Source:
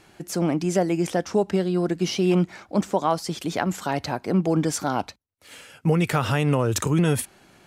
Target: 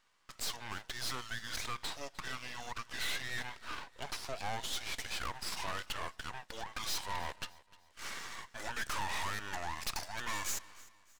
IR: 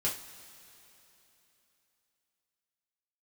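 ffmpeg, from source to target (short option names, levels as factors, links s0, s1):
-filter_complex "[0:a]agate=range=0.112:threshold=0.00355:ratio=16:detection=peak,highpass=f=1300:w=0.5412,highpass=f=1300:w=1.3066,asplit=2[s0][s1];[s1]acompressor=threshold=0.00562:ratio=6,volume=1.41[s2];[s0][s2]amix=inputs=2:normalize=0,aeval=exprs='clip(val(0),-1,0.0355)':c=same,asetrate=30209,aresample=44100,aeval=exprs='max(val(0),0)':c=same,asplit=2[s3][s4];[s4]aecho=0:1:304|608|912:0.0891|0.0357|0.0143[s5];[s3][s5]amix=inputs=2:normalize=0"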